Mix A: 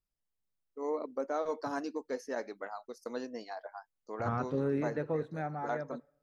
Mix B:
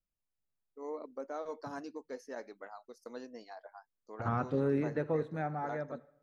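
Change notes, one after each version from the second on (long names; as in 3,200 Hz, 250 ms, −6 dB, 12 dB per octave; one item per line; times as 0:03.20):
first voice −6.5 dB
second voice: send +6.5 dB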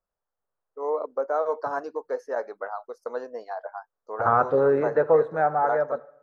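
master: add flat-topped bell 820 Hz +15.5 dB 2.3 octaves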